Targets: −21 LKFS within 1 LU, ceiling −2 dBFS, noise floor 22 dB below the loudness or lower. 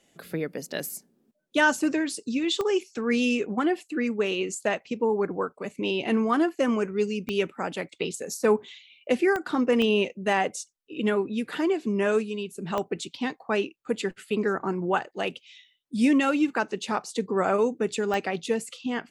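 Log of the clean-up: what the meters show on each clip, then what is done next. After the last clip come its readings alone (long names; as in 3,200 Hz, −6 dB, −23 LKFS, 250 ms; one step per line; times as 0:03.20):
number of clicks 6; integrated loudness −27.0 LKFS; sample peak −9.5 dBFS; target loudness −21.0 LKFS
→ click removal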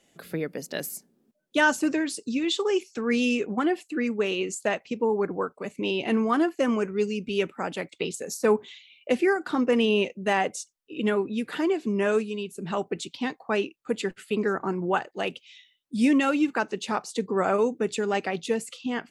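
number of clicks 0; integrated loudness −27.0 LKFS; sample peak −9.5 dBFS; target loudness −21.0 LKFS
→ level +6 dB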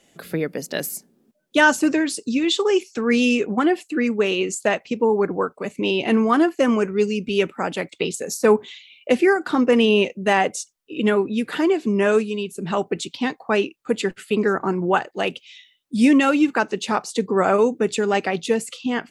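integrated loudness −21.0 LKFS; sample peak −3.5 dBFS; background noise floor −62 dBFS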